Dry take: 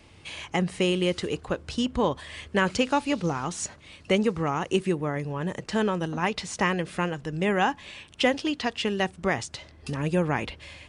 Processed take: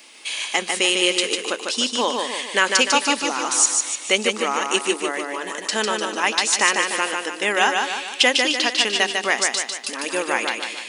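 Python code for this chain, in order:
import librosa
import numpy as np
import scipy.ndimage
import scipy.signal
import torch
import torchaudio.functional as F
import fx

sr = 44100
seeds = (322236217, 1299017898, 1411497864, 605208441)

p1 = fx.brickwall_highpass(x, sr, low_hz=200.0)
p2 = fx.tilt_eq(p1, sr, slope=4.0)
p3 = p2 + fx.echo_feedback(p2, sr, ms=149, feedback_pct=47, wet_db=-4, dry=0)
y = p3 * librosa.db_to_amplitude(5.0)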